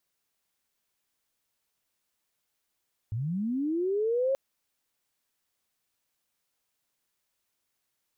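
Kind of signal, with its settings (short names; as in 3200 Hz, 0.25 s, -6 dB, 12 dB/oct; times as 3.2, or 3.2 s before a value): chirp linear 100 Hz -> 550 Hz -28.5 dBFS -> -23 dBFS 1.23 s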